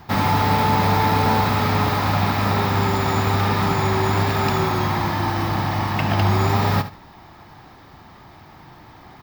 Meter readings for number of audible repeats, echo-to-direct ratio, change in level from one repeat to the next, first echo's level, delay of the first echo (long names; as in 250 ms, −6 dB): 2, −13.0 dB, −13.5 dB, −13.0 dB, 71 ms